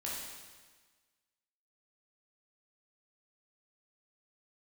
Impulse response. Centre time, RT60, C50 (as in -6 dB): 87 ms, 1.4 s, -0.5 dB